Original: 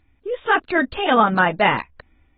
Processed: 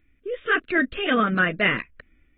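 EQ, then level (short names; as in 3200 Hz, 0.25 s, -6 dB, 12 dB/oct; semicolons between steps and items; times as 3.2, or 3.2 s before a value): bell 88 Hz -9 dB 0.99 oct; fixed phaser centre 2100 Hz, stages 4; 0.0 dB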